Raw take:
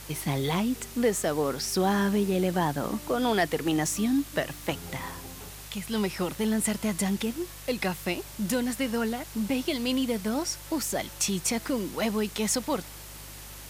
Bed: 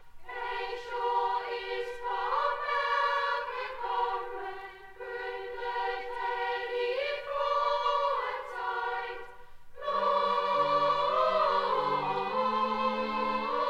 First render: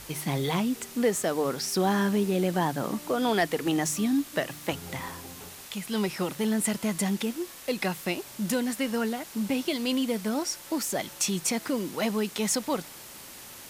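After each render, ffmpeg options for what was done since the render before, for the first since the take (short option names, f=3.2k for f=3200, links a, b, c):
-af "bandreject=f=50:t=h:w=4,bandreject=f=100:t=h:w=4,bandreject=f=150:t=h:w=4"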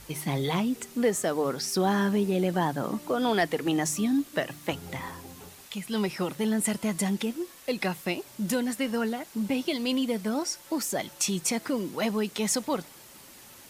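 -af "afftdn=nr=6:nf=-45"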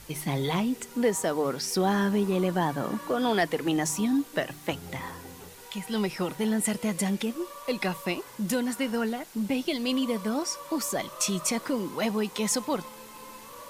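-filter_complex "[1:a]volume=-16dB[a];[0:a][a]amix=inputs=2:normalize=0"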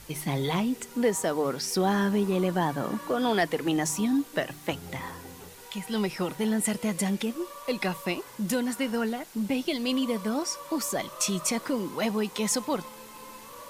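-af anull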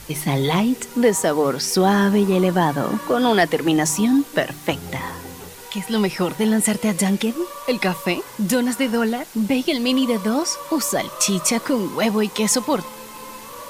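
-af "volume=8.5dB"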